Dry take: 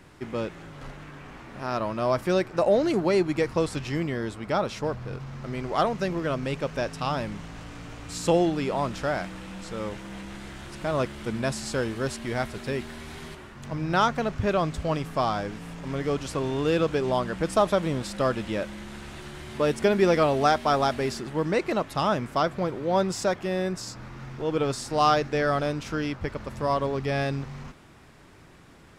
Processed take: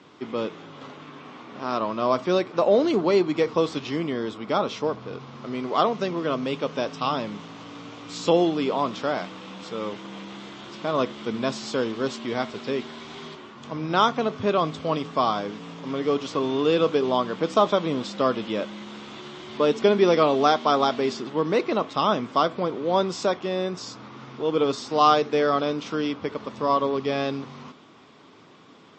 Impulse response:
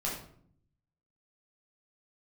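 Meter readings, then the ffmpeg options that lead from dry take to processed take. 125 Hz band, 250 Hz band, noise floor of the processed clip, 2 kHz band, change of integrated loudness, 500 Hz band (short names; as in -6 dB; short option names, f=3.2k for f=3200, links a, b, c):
-4.5 dB, +2.0 dB, -50 dBFS, -1.0 dB, +2.5 dB, +2.5 dB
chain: -filter_complex "[0:a]highpass=f=130:w=0.5412,highpass=f=130:w=1.3066,equalizer=f=140:t=q:w=4:g=-6,equalizer=f=270:t=q:w=4:g=5,equalizer=f=440:t=q:w=4:g=5,equalizer=f=1.1k:t=q:w=4:g=7,equalizer=f=1.7k:t=q:w=4:g=-5,equalizer=f=3.4k:t=q:w=4:g=7,lowpass=f=6.6k:w=0.5412,lowpass=f=6.6k:w=1.3066,asplit=2[a][b];[1:a]atrim=start_sample=2205,atrim=end_sample=4410,asetrate=48510,aresample=44100[c];[b][c]afir=irnorm=-1:irlink=0,volume=-21dB[d];[a][d]amix=inputs=2:normalize=0" -ar 22050 -c:a libmp3lame -b:a 32k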